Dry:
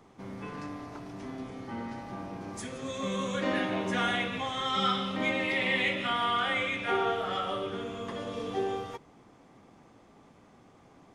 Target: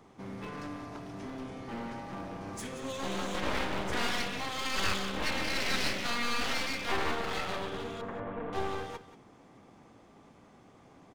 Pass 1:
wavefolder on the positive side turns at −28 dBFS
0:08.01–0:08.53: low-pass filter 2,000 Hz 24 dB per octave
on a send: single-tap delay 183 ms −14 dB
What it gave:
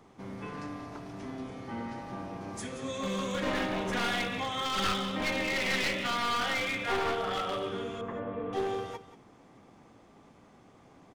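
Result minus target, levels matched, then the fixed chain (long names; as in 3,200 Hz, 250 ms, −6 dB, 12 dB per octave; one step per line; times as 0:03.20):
wavefolder on the positive side: distortion −11 dB
wavefolder on the positive side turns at −36.5 dBFS
0:08.01–0:08.53: low-pass filter 2,000 Hz 24 dB per octave
on a send: single-tap delay 183 ms −14 dB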